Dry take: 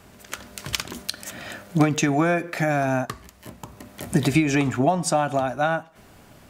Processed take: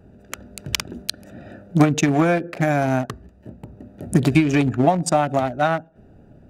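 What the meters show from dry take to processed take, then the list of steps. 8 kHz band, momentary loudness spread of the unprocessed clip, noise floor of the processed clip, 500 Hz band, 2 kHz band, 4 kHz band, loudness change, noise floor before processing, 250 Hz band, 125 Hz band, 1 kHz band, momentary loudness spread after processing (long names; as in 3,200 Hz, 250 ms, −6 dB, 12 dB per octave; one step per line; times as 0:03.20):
0.0 dB, 18 LU, −50 dBFS, +2.5 dB, 0.0 dB, +1.5 dB, +3.0 dB, −51 dBFS, +3.5 dB, +4.0 dB, +2.5 dB, 18 LU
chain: adaptive Wiener filter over 41 samples
level +4 dB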